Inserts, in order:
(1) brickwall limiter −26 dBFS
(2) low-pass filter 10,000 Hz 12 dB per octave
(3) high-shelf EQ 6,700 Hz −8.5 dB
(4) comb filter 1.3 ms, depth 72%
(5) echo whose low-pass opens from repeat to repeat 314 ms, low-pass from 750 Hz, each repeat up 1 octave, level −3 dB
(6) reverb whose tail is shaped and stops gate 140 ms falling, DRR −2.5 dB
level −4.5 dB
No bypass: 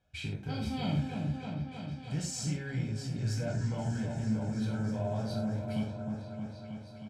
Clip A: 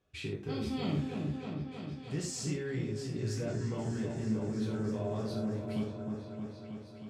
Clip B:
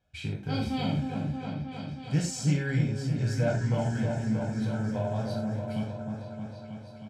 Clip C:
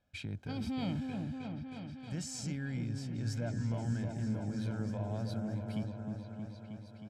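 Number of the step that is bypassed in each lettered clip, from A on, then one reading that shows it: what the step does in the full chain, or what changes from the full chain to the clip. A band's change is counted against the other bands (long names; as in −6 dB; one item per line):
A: 4, 500 Hz band +4.5 dB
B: 1, average gain reduction 2.5 dB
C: 6, echo-to-direct ratio 5.0 dB to −3.5 dB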